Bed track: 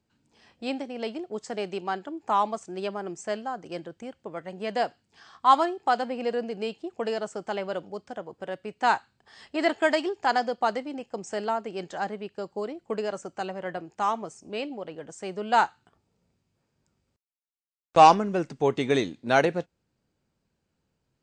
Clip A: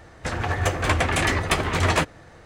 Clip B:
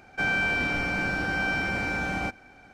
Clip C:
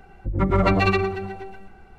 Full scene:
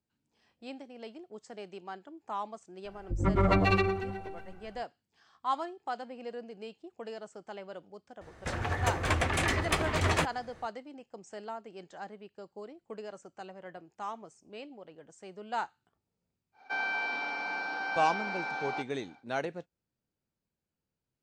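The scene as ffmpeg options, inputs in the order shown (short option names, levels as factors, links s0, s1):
-filter_complex "[0:a]volume=0.237[s0];[2:a]highpass=f=320:w=0.5412,highpass=f=320:w=1.3066,equalizer=f=340:t=q:w=4:g=-9,equalizer=f=560:t=q:w=4:g=-6,equalizer=f=870:t=q:w=4:g=9,equalizer=f=1900:t=q:w=4:g=-5,equalizer=f=3000:t=q:w=4:g=-4,equalizer=f=4200:t=q:w=4:g=5,lowpass=f=5400:w=0.5412,lowpass=f=5400:w=1.3066[s1];[3:a]atrim=end=1.98,asetpts=PTS-STARTPTS,volume=0.501,afade=t=in:d=0.004:c=hsin,afade=t=out:st=1.976:d=0.004:c=hsin,adelay=2850[s2];[1:a]atrim=end=2.45,asetpts=PTS-STARTPTS,volume=0.447,afade=t=in:d=0.004:c=hsin,afade=t=out:st=2.446:d=0.004:c=hsin,adelay=8210[s3];[s1]atrim=end=2.73,asetpts=PTS-STARTPTS,volume=0.501,afade=t=in:d=0.1,afade=t=out:st=2.63:d=0.1,adelay=728532S[s4];[s0][s2][s3][s4]amix=inputs=4:normalize=0"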